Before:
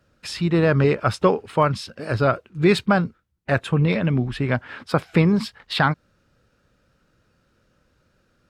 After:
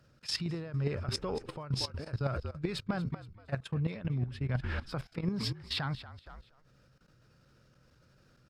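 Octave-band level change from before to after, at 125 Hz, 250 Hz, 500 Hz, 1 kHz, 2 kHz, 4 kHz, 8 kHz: -11.5, -15.5, -18.5, -19.5, -17.5, -6.5, -6.5 dB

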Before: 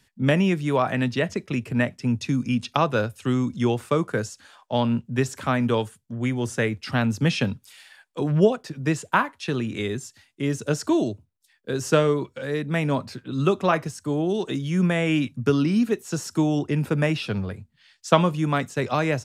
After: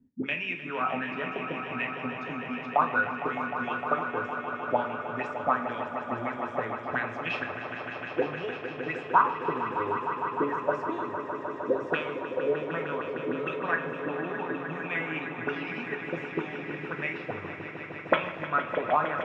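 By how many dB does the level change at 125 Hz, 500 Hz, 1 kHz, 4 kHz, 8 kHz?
-18.0 dB, -6.5 dB, +0.5 dB, -10.5 dB, under -25 dB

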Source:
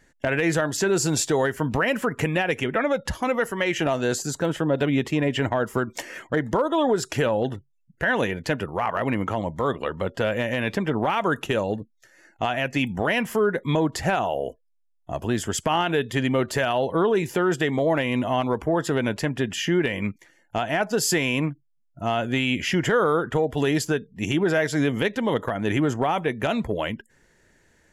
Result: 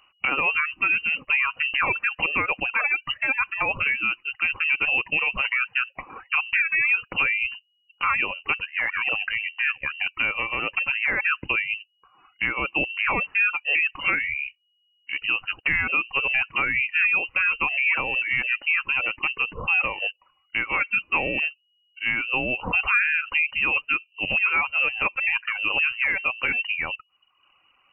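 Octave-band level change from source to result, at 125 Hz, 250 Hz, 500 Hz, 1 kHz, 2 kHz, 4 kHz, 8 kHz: -16.5 dB, -16.5 dB, -15.5 dB, -3.5 dB, +8.0 dB, 0.0 dB, under -40 dB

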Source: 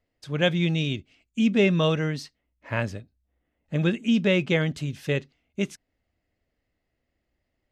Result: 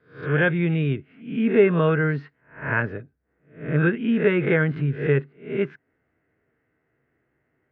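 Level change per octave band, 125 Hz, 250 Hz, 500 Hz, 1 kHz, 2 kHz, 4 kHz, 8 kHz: +3.5 dB, +1.5 dB, +5.0 dB, +4.5 dB, +5.0 dB, -11.0 dB, under -30 dB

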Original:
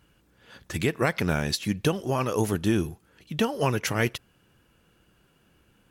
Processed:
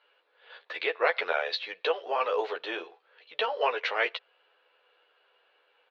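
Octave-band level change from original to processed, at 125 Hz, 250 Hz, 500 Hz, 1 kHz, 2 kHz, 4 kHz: under -40 dB, -21.5 dB, -1.5 dB, +1.5 dB, +1.0 dB, -0.5 dB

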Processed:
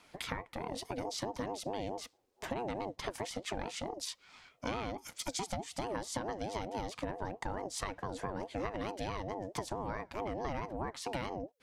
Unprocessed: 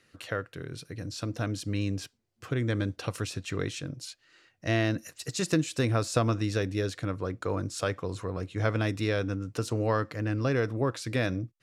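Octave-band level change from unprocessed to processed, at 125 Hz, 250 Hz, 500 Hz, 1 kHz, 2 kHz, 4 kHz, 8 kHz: -16.0, -10.5, -8.0, -1.0, -9.5, -5.0, -4.0 dB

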